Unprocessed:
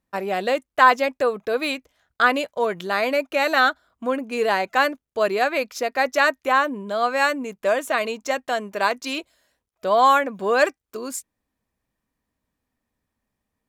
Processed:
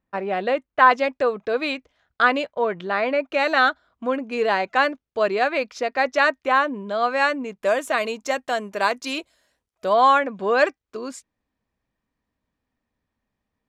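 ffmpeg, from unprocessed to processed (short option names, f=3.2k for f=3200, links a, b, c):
-af "asetnsamples=n=441:p=0,asendcmd='0.91 lowpass f 4600;2.48 lowpass f 2700;3.29 lowpass f 4800;7.63 lowpass f 11000;9.93 lowpass f 4800',lowpass=2.8k"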